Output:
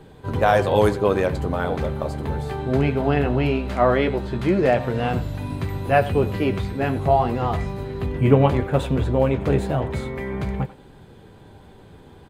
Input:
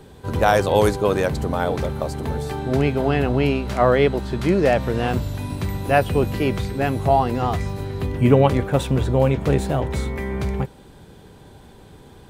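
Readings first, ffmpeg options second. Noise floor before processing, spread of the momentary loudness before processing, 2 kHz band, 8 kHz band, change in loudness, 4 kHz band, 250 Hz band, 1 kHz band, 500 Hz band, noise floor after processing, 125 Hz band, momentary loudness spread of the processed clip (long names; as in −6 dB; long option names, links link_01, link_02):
−46 dBFS, 10 LU, −1.5 dB, can't be measured, −1.0 dB, −3.5 dB, −1.0 dB, −1.0 dB, −1.0 dB, −47 dBFS, −1.0 dB, 10 LU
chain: -filter_complex "[0:a]bass=frequency=250:gain=0,treble=frequency=4000:gain=-7,bandreject=frequency=5700:width=19,flanger=delay=6.1:depth=9.6:regen=-48:speed=0.19:shape=triangular,asplit=2[link_01][link_02];[link_02]adelay=90,highpass=300,lowpass=3400,asoftclip=type=hard:threshold=-13.5dB,volume=-15dB[link_03];[link_01][link_03]amix=inputs=2:normalize=0,volume=3dB"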